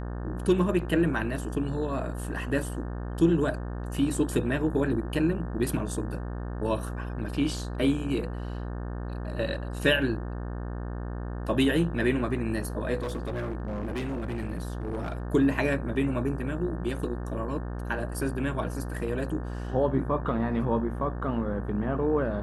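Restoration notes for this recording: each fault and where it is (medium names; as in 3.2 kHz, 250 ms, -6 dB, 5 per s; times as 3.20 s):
buzz 60 Hz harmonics 30 -34 dBFS
13.00–15.25 s: clipped -28 dBFS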